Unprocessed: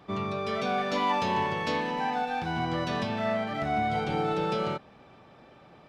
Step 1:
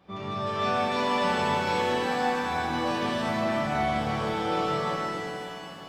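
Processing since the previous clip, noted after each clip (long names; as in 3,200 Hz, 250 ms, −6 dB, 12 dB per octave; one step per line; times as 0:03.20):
reverb with rising layers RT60 3.4 s, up +7 semitones, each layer −8 dB, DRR −9 dB
level −8 dB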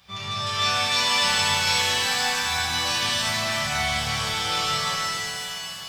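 drawn EQ curve 100 Hz 0 dB, 300 Hz −18 dB, 5,600 Hz +14 dB
level +5 dB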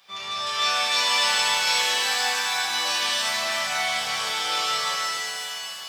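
high-pass filter 400 Hz 12 dB per octave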